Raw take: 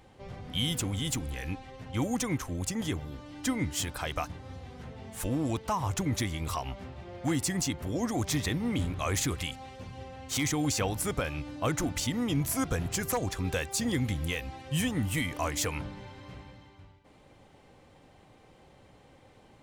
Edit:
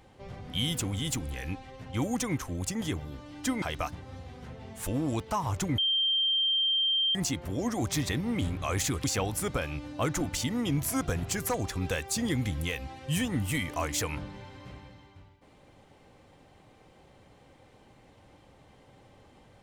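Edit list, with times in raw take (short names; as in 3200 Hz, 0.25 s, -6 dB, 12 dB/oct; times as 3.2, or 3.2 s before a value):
3.62–3.99 cut
6.15–7.52 bleep 3160 Hz -23.5 dBFS
9.41–10.67 cut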